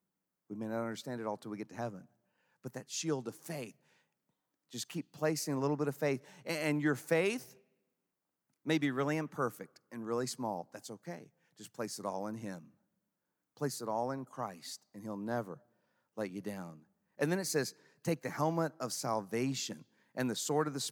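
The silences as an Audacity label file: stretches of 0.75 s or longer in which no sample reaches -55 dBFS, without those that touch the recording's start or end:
3.710000	4.710000	silence
7.580000	8.650000	silence
12.680000	13.570000	silence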